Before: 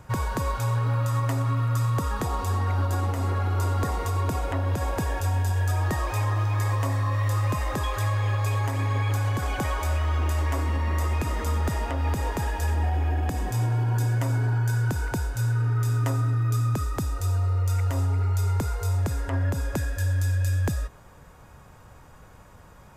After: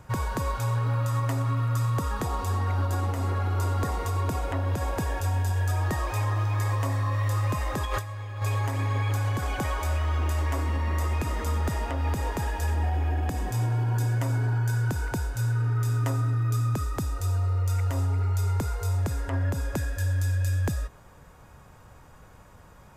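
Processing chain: 7.85–8.42 negative-ratio compressor -29 dBFS, ratio -0.5; gain -1.5 dB

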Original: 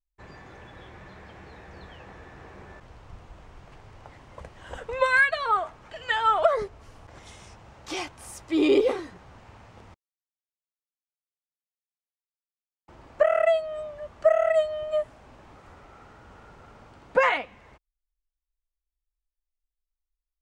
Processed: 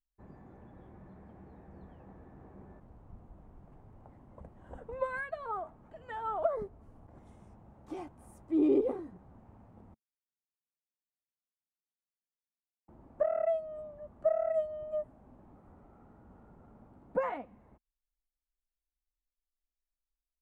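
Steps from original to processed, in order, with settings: EQ curve 120 Hz 0 dB, 220 Hz +7 dB, 470 Hz -3 dB, 750 Hz -2 dB, 2900 Hz -21 dB, 5400 Hz -24 dB, 10000 Hz -12 dB; gain -6.5 dB

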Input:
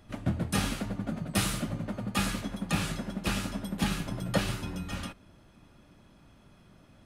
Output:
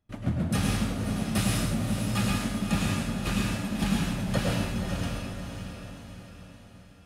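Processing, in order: gate with hold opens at -45 dBFS; bell 77 Hz +4.5 dB 2.8 oct; on a send: diffused feedback echo 0.538 s, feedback 50%, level -7 dB; on the sum: plate-style reverb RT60 0.91 s, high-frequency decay 0.8×, pre-delay 90 ms, DRR -0.5 dB; gain -2.5 dB

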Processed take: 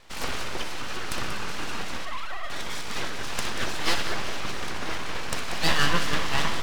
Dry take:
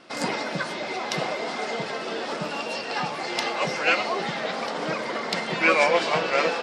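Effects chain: 2.05–2.5 sine-wave speech; full-wave rectifier; vibrato 2.9 Hz 7.7 cents; multi-head echo 62 ms, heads first and third, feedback 43%, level -11.5 dB; gain -1 dB

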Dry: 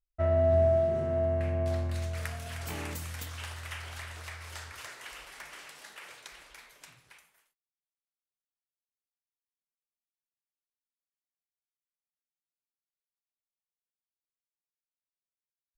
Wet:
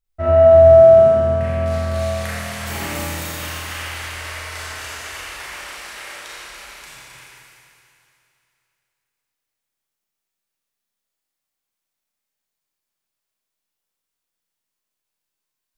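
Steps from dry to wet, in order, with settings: Schroeder reverb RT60 2.7 s, combs from 29 ms, DRR -8 dB; gain +5 dB

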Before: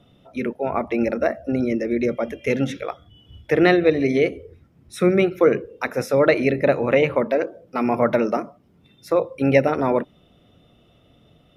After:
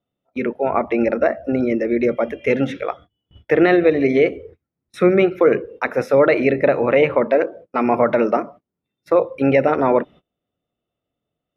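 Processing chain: gate -42 dBFS, range -28 dB; tone controls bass -6 dB, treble -14 dB; maximiser +8.5 dB; gain -3.5 dB

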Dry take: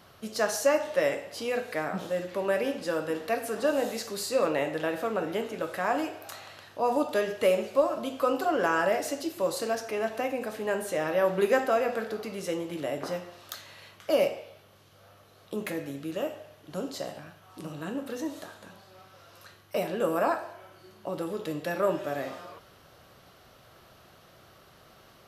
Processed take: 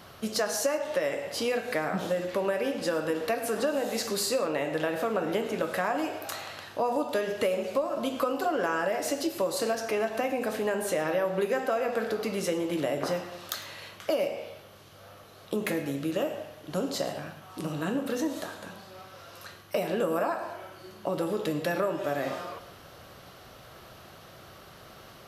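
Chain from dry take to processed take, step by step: compressor, threshold -31 dBFS, peak gain reduction 13 dB; on a send: reverb RT60 0.50 s, pre-delay 99 ms, DRR 14 dB; on the sum: gain +6 dB

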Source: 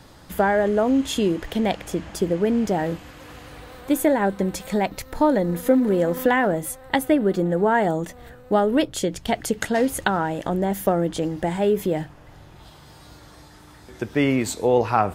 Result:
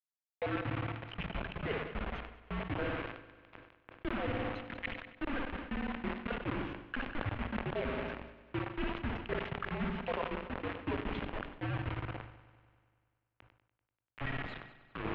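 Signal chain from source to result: random spectral dropouts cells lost 63%; reverb removal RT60 1.6 s; spring tank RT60 1.1 s, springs 57 ms, chirp 35 ms, DRR 6.5 dB; reverse; compressor 12:1, threshold -34 dBFS, peak gain reduction 20.5 dB; reverse; requantised 6-bit, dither none; on a send: multi-head echo 97 ms, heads first and second, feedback 59%, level -20 dB; on the sum: mistuned SSB -290 Hz 290–3200 Hz; sustainer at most 80 dB/s; gain +1 dB

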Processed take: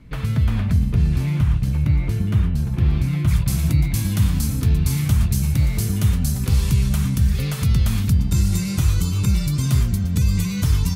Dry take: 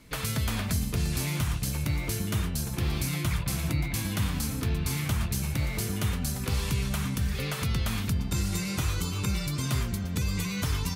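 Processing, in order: tone controls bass +12 dB, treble -12 dB, from 3.27 s treble +5 dB

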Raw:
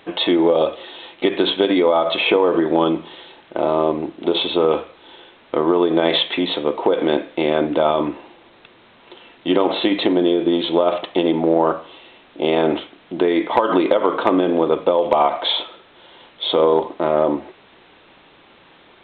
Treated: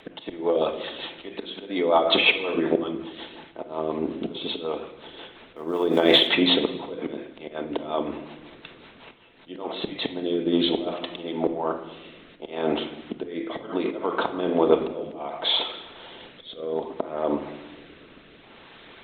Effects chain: 5.56–6.27 G.711 law mismatch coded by A; auto swell 0.587 s; rotary speaker horn 5.5 Hz, later 0.65 Hz, at 9.28; reverb RT60 1.0 s, pre-delay 4 ms, DRR 5 dB; harmonic-percussive split percussive +7 dB; gain -1.5 dB

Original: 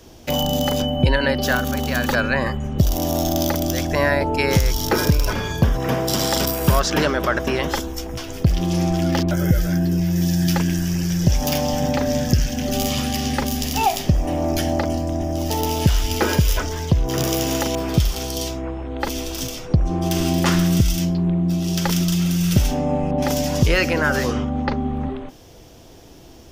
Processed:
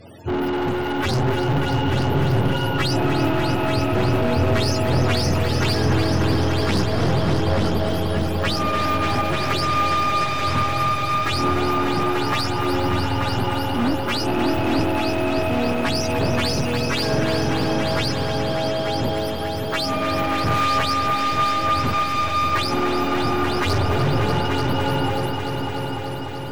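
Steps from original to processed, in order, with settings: spectrum mirrored in octaves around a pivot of 460 Hz; tilt shelf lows +4 dB, about 760 Hz; added harmonics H 3 -12 dB, 5 -11 dB, 8 -17 dB, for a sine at -3.5 dBFS; soft clip -19 dBFS, distortion -9 dB; multi-head echo 0.295 s, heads all three, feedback 66%, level -10 dB

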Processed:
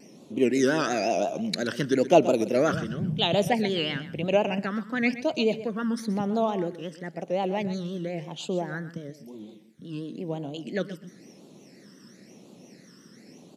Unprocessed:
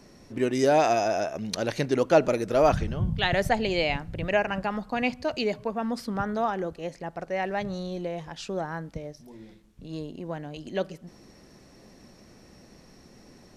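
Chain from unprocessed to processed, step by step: HPF 160 Hz 24 dB/oct; phaser stages 12, 0.98 Hz, lowest notch 720–1800 Hz; vibrato 5.7 Hz 92 cents; on a send: feedback echo 0.126 s, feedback 17%, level -14 dB; on the sum: gain +4 dB

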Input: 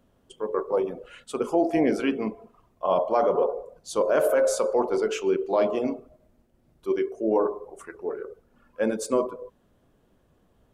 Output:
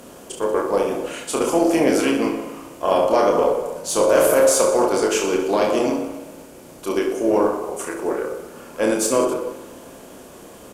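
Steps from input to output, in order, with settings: per-bin compression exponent 0.6; high shelf 4200 Hz +12 dB; reverse bouncing-ball echo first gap 30 ms, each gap 1.3×, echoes 5; added harmonics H 6 -32 dB, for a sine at -3.5 dBFS; spring tank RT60 2.2 s, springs 54 ms, chirp 40 ms, DRR 13.5 dB

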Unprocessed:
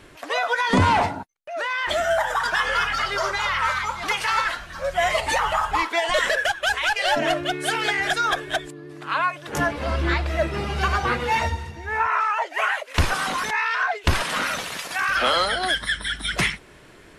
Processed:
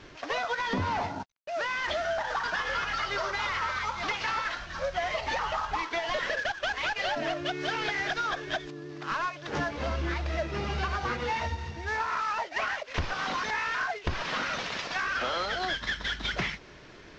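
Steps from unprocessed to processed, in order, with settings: CVSD 32 kbps; compressor, threshold -26 dBFS, peak gain reduction 11 dB; gain -1.5 dB

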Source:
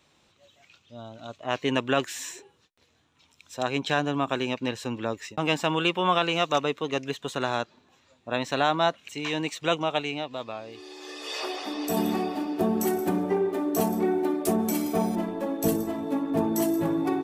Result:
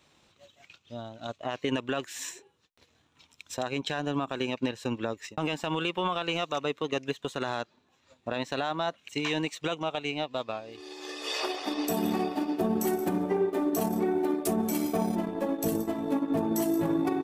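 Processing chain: transient shaper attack +6 dB, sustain -7 dB; limiter -18.5 dBFS, peak gain reduction 14 dB

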